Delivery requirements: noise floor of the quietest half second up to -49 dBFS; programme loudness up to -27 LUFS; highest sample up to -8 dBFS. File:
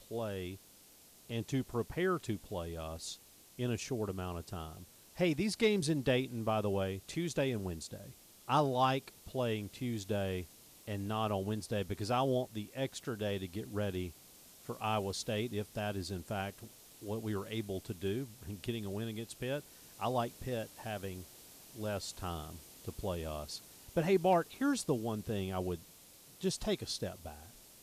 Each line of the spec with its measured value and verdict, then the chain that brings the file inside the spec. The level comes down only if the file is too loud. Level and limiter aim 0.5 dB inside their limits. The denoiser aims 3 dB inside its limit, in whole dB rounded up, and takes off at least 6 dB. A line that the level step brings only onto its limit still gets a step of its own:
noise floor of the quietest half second -60 dBFS: OK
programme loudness -37.0 LUFS: OK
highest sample -18.5 dBFS: OK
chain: none

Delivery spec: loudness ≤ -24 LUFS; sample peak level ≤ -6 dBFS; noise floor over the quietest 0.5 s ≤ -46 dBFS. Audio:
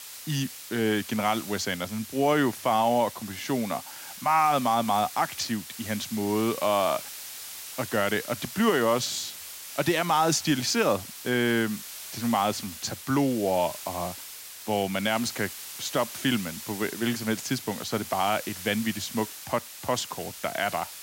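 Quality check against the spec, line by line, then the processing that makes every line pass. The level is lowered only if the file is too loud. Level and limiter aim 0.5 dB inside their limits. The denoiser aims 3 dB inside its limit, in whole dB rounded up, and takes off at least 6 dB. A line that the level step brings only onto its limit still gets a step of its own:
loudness -27.5 LUFS: OK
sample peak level -12.0 dBFS: OK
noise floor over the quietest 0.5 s -42 dBFS: fail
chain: denoiser 7 dB, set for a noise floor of -42 dBFS

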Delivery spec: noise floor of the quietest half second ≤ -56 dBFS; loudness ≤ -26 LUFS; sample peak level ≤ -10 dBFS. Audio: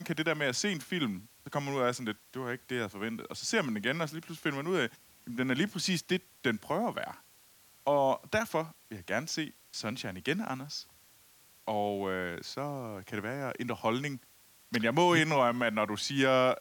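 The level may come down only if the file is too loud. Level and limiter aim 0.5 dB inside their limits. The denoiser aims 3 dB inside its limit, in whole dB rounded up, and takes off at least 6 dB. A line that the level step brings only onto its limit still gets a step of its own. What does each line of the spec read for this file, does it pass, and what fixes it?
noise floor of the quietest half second -61 dBFS: OK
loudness -32.5 LUFS: OK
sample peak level -14.0 dBFS: OK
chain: none

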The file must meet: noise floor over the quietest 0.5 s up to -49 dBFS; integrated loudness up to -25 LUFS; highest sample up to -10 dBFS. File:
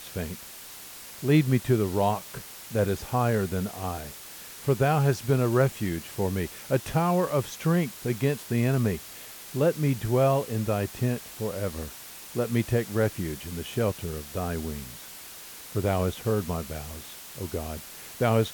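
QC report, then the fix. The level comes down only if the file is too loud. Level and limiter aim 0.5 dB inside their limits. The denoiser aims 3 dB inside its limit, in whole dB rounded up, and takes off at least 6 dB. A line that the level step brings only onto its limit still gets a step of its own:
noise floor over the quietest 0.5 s -44 dBFS: fail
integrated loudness -27.5 LUFS: OK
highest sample -10.5 dBFS: OK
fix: denoiser 8 dB, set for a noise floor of -44 dBFS

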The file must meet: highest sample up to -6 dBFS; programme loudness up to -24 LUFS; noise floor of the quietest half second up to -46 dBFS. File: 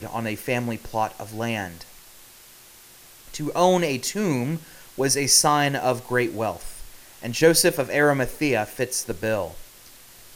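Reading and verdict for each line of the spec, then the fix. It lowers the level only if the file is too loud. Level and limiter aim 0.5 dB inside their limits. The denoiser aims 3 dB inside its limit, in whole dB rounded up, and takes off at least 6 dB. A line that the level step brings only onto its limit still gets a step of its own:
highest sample -5.0 dBFS: fail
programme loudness -22.5 LUFS: fail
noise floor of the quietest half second -49 dBFS: OK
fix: gain -2 dB

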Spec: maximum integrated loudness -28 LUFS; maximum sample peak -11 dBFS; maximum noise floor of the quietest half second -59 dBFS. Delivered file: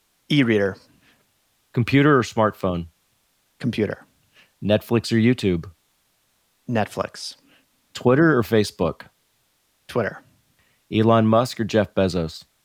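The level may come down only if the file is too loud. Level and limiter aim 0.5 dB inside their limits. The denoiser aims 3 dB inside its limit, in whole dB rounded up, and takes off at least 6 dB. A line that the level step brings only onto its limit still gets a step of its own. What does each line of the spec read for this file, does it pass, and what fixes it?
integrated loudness -21.0 LUFS: fail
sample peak -6.0 dBFS: fail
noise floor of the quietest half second -66 dBFS: OK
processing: gain -7.5 dB

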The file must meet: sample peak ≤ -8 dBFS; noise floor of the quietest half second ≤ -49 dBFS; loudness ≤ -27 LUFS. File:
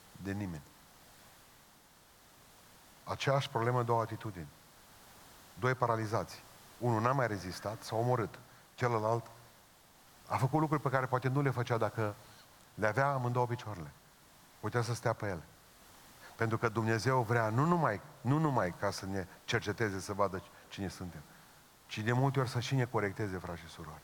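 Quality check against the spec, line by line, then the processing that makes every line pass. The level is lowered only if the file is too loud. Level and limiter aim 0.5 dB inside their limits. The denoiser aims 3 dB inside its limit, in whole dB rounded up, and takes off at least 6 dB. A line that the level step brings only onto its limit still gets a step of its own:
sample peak -13.0 dBFS: OK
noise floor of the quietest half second -62 dBFS: OK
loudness -34.5 LUFS: OK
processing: none

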